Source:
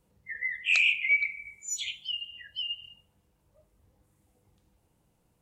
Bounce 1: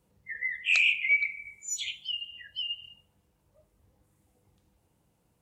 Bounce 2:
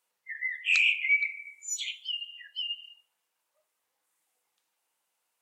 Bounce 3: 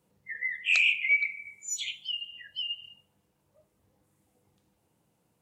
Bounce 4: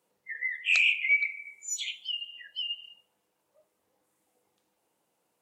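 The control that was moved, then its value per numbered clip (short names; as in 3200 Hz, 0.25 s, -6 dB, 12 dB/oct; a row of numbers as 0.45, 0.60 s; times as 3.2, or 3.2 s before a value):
HPF, cutoff: 43, 1200, 120, 400 Hz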